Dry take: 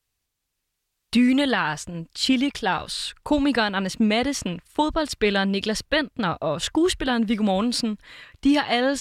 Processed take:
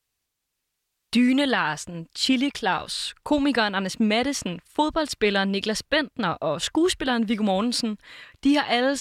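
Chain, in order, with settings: low shelf 110 Hz -8 dB

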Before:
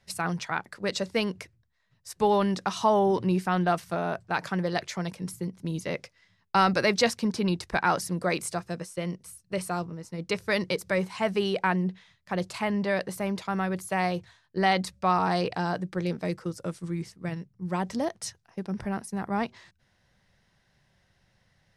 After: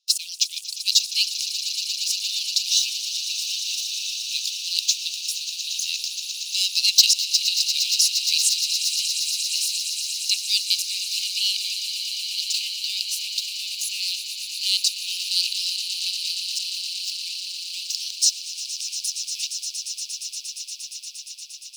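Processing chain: band shelf 5200 Hz +9 dB 1.1 oct; in parallel at -3 dB: level quantiser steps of 10 dB; on the sum: sample leveller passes 3; steep high-pass 2600 Hz 96 dB/oct; on a send: swelling echo 0.117 s, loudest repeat 8, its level -12.5 dB; on the sum: gain -3.5 dB

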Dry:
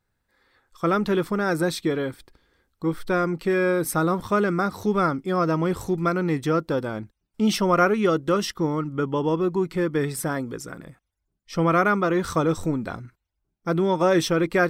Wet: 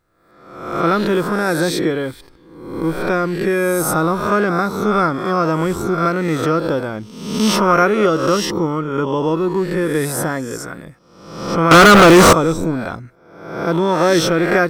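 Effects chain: spectral swells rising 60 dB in 0.86 s; 11.71–12.33 sample leveller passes 5; gain +4 dB

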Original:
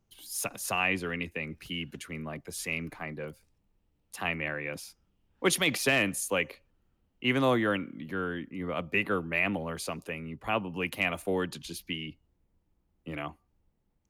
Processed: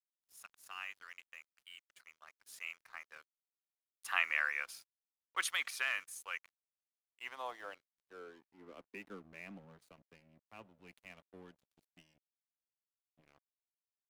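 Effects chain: Doppler pass-by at 4.32, 8 m/s, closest 4.4 m; high-pass sweep 1300 Hz -> 130 Hz, 6.86–9.82; crossover distortion -56 dBFS; gain -2.5 dB

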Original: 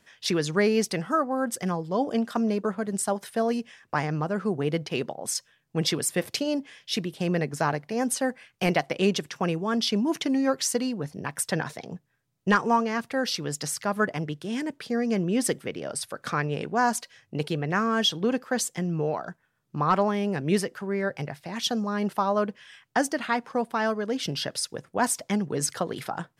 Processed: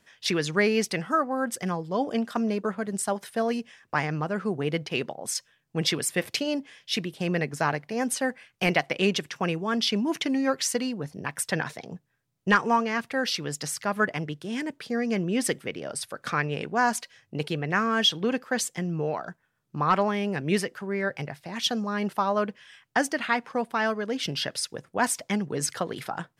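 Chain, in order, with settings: dynamic EQ 2300 Hz, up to +6 dB, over -41 dBFS, Q 0.97; gain -1.5 dB

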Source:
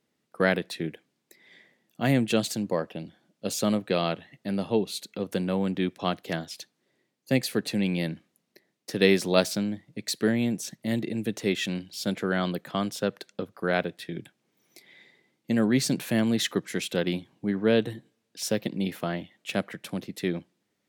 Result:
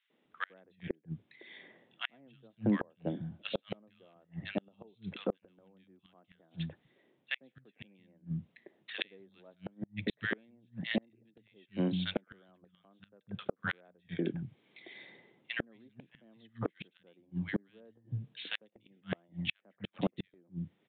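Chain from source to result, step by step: downsampling 8000 Hz; three bands offset in time highs, mids, lows 0.1/0.25 s, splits 170/1500 Hz; flipped gate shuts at -24 dBFS, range -39 dB; gain +4.5 dB

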